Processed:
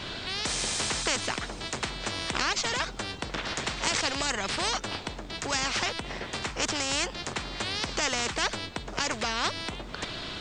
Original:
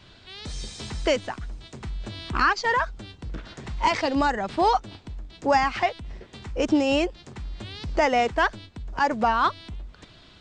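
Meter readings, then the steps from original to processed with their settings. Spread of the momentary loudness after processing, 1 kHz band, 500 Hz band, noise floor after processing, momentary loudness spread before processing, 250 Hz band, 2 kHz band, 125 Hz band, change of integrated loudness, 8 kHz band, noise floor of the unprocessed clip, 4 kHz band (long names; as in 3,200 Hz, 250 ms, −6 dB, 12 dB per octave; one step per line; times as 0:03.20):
8 LU, −9.5 dB, −9.0 dB, −41 dBFS, 19 LU, −9.0 dB, −2.5 dB, −3.5 dB, −5.0 dB, +12.5 dB, −52 dBFS, +5.5 dB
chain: every bin compressed towards the loudest bin 4 to 1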